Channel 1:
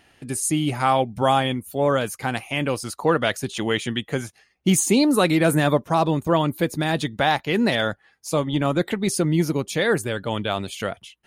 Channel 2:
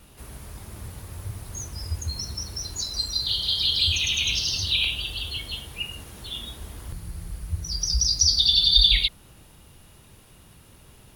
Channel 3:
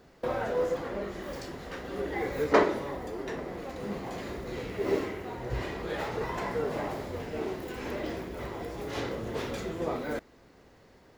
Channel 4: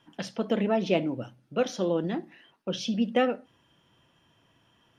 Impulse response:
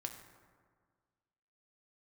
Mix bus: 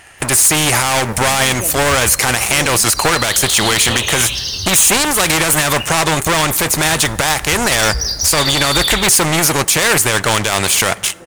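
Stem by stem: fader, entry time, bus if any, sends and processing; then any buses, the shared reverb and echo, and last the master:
+2.5 dB, 0.00 s, send -11 dB, sample leveller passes 3; graphic EQ 250/1000/2000/4000/8000 Hz -9/+3/+5/-5/+11 dB; spectral compressor 2:1
-6.5 dB, 0.00 s, no send, sample leveller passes 3
-7.5 dB, 1.40 s, no send, dry
-3.0 dB, 0.70 s, no send, dry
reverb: on, RT60 1.7 s, pre-delay 4 ms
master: limiter -2 dBFS, peak gain reduction 9 dB

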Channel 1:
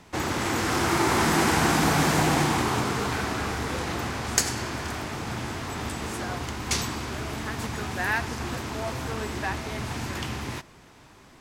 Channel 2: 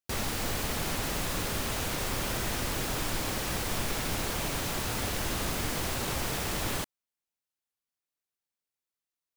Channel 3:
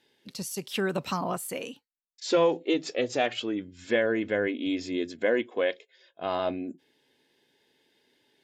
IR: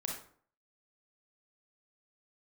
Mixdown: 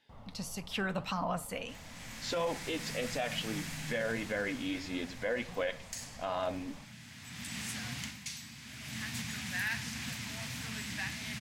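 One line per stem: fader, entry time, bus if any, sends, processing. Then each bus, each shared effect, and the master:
-2.5 dB, 1.55 s, send -14 dB, HPF 160 Hz 12 dB/oct; AGC gain up to 4 dB; band shelf 670 Hz -15 dB 2.4 oct; auto duck -23 dB, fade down 0.25 s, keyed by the third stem
-15.0 dB, 0.00 s, send -7 dB, polynomial smoothing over 65 samples
+2.5 dB, 0.00 s, send -16.5 dB, high shelf 6400 Hz -10 dB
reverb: on, RT60 0.55 s, pre-delay 27 ms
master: bell 360 Hz -14.5 dB 0.62 oct; flange 1.6 Hz, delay 2.8 ms, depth 8.1 ms, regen +68%; limiter -24.5 dBFS, peak gain reduction 9 dB

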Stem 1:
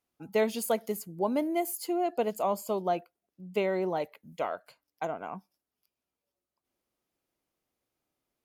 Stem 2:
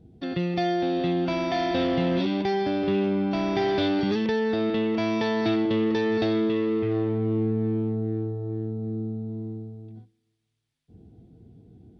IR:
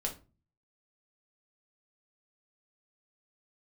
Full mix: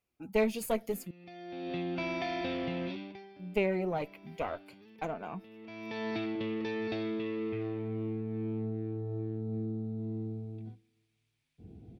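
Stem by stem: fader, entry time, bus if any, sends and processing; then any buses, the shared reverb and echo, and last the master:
-0.5 dB, 0.00 s, muted 1.11–3.39, no send, one diode to ground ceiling -25.5 dBFS; low shelf 360 Hz +8 dB; flange 0.63 Hz, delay 1.5 ms, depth 6.4 ms, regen -41%
-0.5 dB, 0.70 s, no send, compressor 10:1, threshold -32 dBFS, peak gain reduction 12 dB; auto duck -21 dB, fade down 0.55 s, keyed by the first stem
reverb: off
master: bell 2400 Hz +9 dB 0.4 oct

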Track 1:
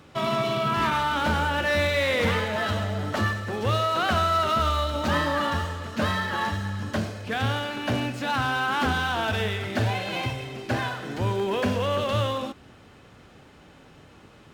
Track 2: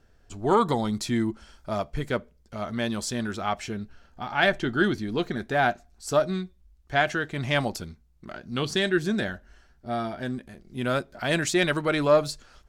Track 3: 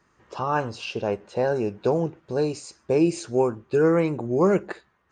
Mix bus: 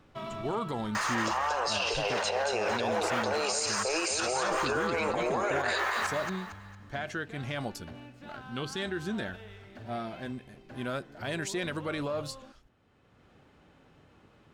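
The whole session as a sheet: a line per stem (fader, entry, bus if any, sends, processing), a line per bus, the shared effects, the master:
-8.5 dB, 0.00 s, no send, no echo send, high shelf 3800 Hz -7 dB; limiter -18.5 dBFS, peak gain reduction 5.5 dB; auto duck -11 dB, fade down 0.90 s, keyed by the second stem
-7.0 dB, 0.00 s, no send, no echo send, limiter -17.5 dBFS, peak gain reduction 11 dB
+0.5 dB, 0.95 s, no send, echo send -5.5 dB, HPF 640 Hz 24 dB/oct; limiter -24 dBFS, peak gain reduction 10.5 dB; fast leveller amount 100%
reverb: off
echo: feedback echo 0.228 s, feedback 36%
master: limiter -20 dBFS, peak gain reduction 6 dB

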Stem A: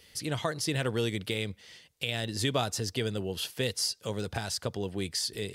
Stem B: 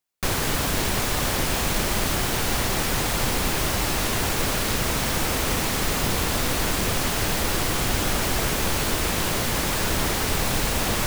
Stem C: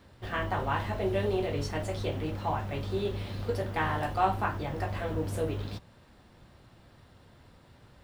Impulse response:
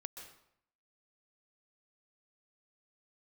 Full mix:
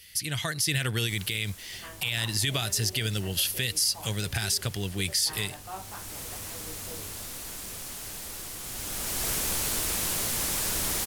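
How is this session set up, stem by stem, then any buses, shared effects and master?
+3.0 dB, 0.00 s, no send, ten-band EQ 250 Hz -7 dB, 500 Hz -11 dB, 1000 Hz -9 dB, 2000 Hz +3 dB, 4000 Hz -3 dB, 8000 Hz -7 dB; AGC gain up to 5 dB
8.6 s -21 dB -> 9.29 s -11 dB, 0.85 s, no send, auto duck -10 dB, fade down 1.75 s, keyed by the first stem
-14.5 dB, 1.50 s, no send, dry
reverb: off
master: bell 11000 Hz +13.5 dB 2.1 oct; limiter -15.5 dBFS, peak gain reduction 10 dB

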